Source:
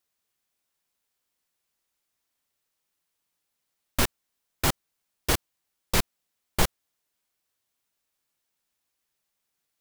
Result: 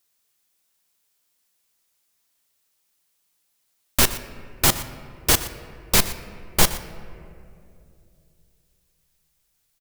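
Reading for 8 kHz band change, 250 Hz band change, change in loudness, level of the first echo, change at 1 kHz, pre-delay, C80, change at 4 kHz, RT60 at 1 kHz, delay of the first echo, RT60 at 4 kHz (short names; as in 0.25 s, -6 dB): +10.0 dB, +4.0 dB, +7.5 dB, -16.5 dB, +4.5 dB, 5 ms, 12.5 dB, +8.0 dB, 2.2 s, 0.12 s, 1.3 s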